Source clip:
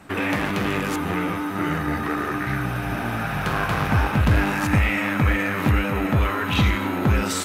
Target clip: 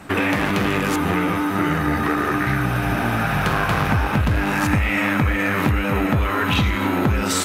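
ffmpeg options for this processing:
-af "acompressor=threshold=-22dB:ratio=6,volume=6.5dB"

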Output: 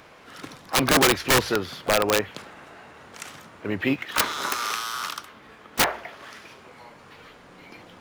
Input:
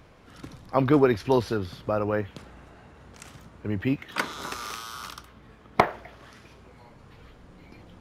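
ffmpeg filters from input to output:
-filter_complex "[0:a]acrossover=split=2800[a][b];[a]aemphasis=mode=production:type=riaa[c];[b]acrusher=bits=4:mode=log:mix=0:aa=0.000001[d];[c][d]amix=inputs=2:normalize=0,aeval=exprs='(mod(8.91*val(0)+1,2)-1)/8.91':c=same,asplit=2[e][f];[f]asetrate=58866,aresample=44100,atempo=0.749154,volume=-15dB[g];[e][g]amix=inputs=2:normalize=0,bandreject=f=60.31:t=h:w=4,bandreject=f=120.62:t=h:w=4,volume=7.5dB"

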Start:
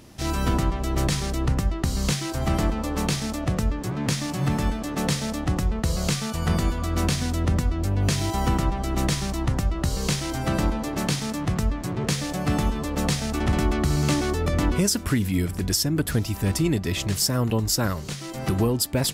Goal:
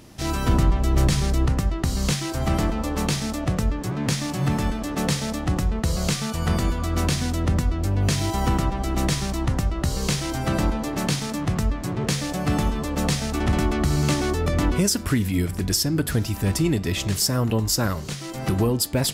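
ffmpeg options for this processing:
-filter_complex "[0:a]asettb=1/sr,asplit=3[a][b][c];[a]atrim=end=0.484[d];[b]atrim=start=0.48:end=1.46,asetpts=PTS-STARTPTS,afade=t=in:d=0.004:c=qsin,afade=t=out:st=0.976:d=0.004:c=qsin,lowshelf=f=160:g=6.5[e];[c]atrim=start=1.456[f];[d][e]acrossfade=d=0.004:c1=hsin:c2=qsin[g];[g][f]acrossfade=d=0.004:c1=qsin:c2=hsin,acontrast=45,flanger=delay=6.3:depth=6.2:regen=-89:speed=0.27:shape=triangular"

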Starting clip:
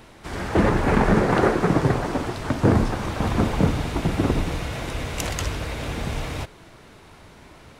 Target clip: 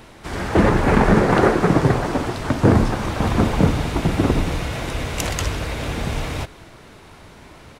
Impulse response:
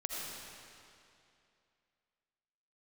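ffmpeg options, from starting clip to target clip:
-af "aecho=1:1:193:0.075,volume=3.5dB"

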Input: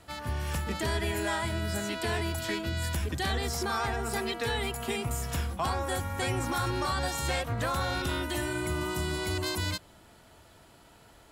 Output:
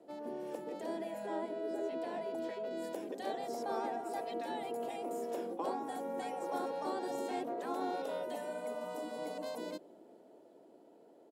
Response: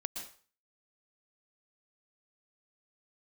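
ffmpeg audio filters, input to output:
-filter_complex "[0:a]asettb=1/sr,asplit=3[a][b][c];[a]atrim=end=1.264[d];[b]atrim=start=1.26:end=2.71,asetpts=PTS-STARTPTS,afade=t=in:d=0.004:c=qsin,afade=t=out:st=1.446:d=0.004:c=qsin,highshelf=f=6k:g=-10[e];[c]atrim=start=2.706[f];[d][e]acrossfade=d=0.004:c1=hsin:c2=qsin[g];[g][f]acrossfade=d=0.004:c1=qsin:c2=hsin,dynaudnorm=f=280:g=13:m=3.5dB,firequalizer=gain_entry='entry(500,0);entry(1200,-23);entry(2300,-25)':delay=0.05:min_phase=1,afftfilt=real='re*lt(hypot(re,im),0.1)':imag='im*lt(hypot(re,im),0.1)':win_size=1024:overlap=0.75,highpass=f=280:w=0.5412,highpass=f=280:w=1.3066,volume=4dB"

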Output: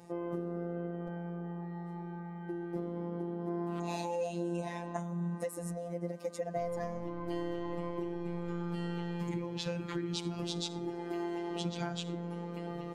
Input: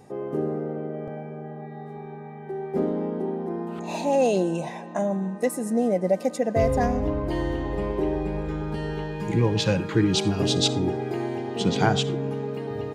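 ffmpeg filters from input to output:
-filter_complex "[0:a]asettb=1/sr,asplit=3[a][b][c];[a]atrim=end=10.794[d];[b]atrim=start=10.79:end=11.51,asetpts=PTS-STARTPTS,afade=t=in:d=0.004:c=qsin,afade=t=out:st=0.716:d=0.004:c=qsin,equalizer=f=160:t=o:w=1.1:g=-9.5[e];[c]atrim=start=11.506[f];[d][e]acrossfade=d=0.004:c1=hsin:c2=qsin[g];[g][f]acrossfade=d=0.004:c1=qsin:c2=hsin,acompressor=threshold=-30dB:ratio=8,afftfilt=real='hypot(re,im)*cos(PI*b)':imag='0':win_size=1024:overlap=0.75"

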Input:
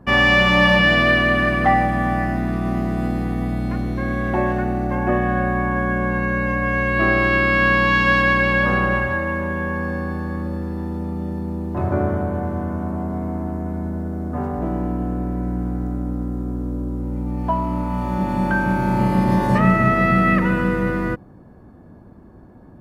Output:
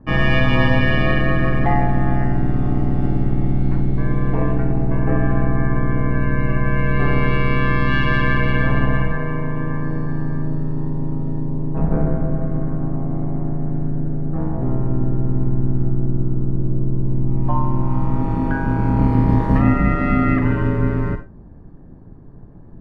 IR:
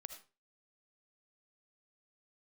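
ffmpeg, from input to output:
-filter_complex "[0:a]aemphasis=mode=reproduction:type=bsi,aeval=exprs='val(0)*sin(2*PI*70*n/s)':c=same[a];[1:a]atrim=start_sample=2205,asetrate=66150,aresample=44100[b];[a][b]afir=irnorm=-1:irlink=0,volume=7dB"

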